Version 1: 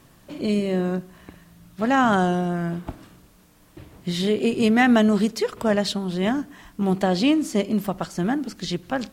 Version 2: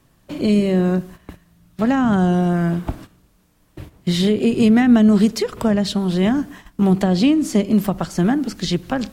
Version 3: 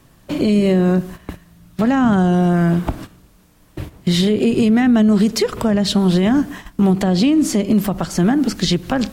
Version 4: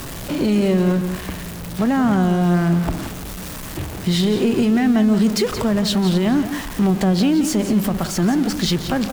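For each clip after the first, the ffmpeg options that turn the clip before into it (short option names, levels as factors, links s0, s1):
-filter_complex "[0:a]agate=range=0.251:threshold=0.00708:ratio=16:detection=peak,lowshelf=f=120:g=5.5,acrossover=split=300[s0][s1];[s1]acompressor=threshold=0.0501:ratio=10[s2];[s0][s2]amix=inputs=2:normalize=0,volume=2"
-af "alimiter=limit=0.188:level=0:latency=1:release=136,volume=2.24"
-af "aeval=exprs='val(0)+0.5*0.0841*sgn(val(0))':c=same,aecho=1:1:175:0.299,volume=0.631"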